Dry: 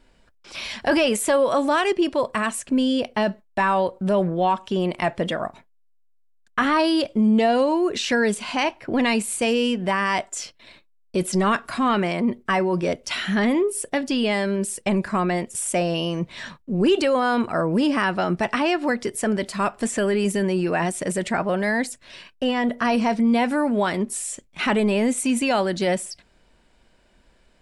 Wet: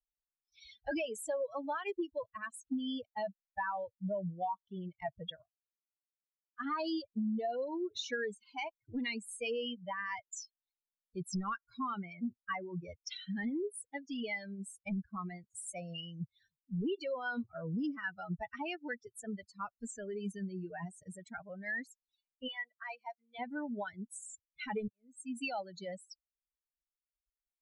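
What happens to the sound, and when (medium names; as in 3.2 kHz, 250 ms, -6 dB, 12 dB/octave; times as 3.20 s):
5.42–6.60 s: gain -7.5 dB
22.48–23.39 s: band-pass 620–5400 Hz
24.88–25.46 s: fade in
whole clip: expander on every frequency bin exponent 3; compression, threshold -28 dBFS; Bessel low-pass 7.2 kHz, order 2; trim -5 dB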